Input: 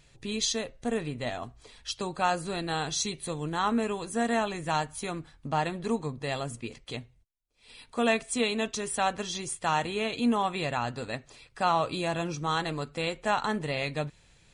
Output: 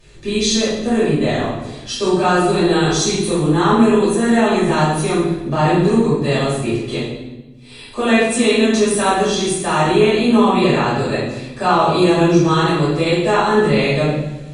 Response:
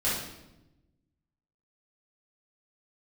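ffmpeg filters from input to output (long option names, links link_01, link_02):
-filter_complex "[0:a]asplit=2[link_01][link_02];[link_02]alimiter=limit=-23.5dB:level=0:latency=1,volume=-0.5dB[link_03];[link_01][link_03]amix=inputs=2:normalize=0,equalizer=frequency=350:width=2.8:gain=9.5,bandreject=frequency=60:width_type=h:width=6,bandreject=frequency=120:width_type=h:width=6[link_04];[1:a]atrim=start_sample=2205,asetrate=36162,aresample=44100[link_05];[link_04][link_05]afir=irnorm=-1:irlink=0,volume=-3.5dB"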